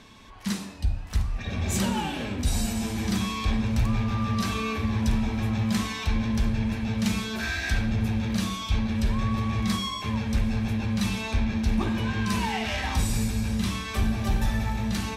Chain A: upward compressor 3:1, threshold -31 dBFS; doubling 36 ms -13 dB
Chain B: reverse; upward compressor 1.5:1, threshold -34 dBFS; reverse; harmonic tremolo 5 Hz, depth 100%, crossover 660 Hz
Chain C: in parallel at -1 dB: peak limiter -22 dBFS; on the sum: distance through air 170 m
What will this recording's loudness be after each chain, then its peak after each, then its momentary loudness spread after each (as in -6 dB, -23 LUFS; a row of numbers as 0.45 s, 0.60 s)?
-27.0 LUFS, -31.5 LUFS, -24.0 LUFS; -12.5 dBFS, -15.0 dBFS, -11.5 dBFS; 3 LU, 3 LU, 3 LU